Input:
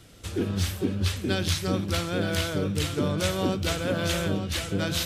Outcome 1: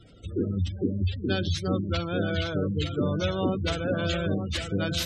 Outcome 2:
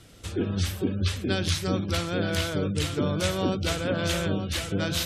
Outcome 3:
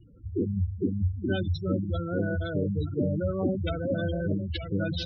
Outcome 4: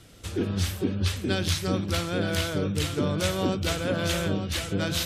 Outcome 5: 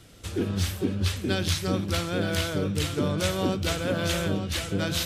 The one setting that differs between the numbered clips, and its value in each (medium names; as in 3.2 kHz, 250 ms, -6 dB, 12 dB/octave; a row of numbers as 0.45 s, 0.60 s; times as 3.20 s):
spectral gate, under each frame's peak: -20 dB, -35 dB, -10 dB, -45 dB, -60 dB